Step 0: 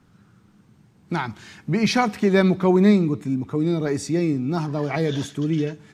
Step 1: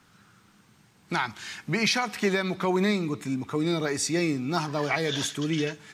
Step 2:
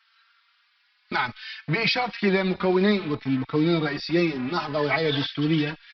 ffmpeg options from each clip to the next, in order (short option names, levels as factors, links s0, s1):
-af "tiltshelf=f=670:g=-7.5,alimiter=limit=0.2:level=0:latency=1:release=316"
-filter_complex "[0:a]acrossover=split=1300[s0][s1];[s0]acrusher=bits=5:mix=0:aa=0.5[s2];[s2][s1]amix=inputs=2:normalize=0,aresample=11025,aresample=44100,asplit=2[s3][s4];[s4]adelay=4,afreqshift=0.57[s5];[s3][s5]amix=inputs=2:normalize=1,volume=1.88"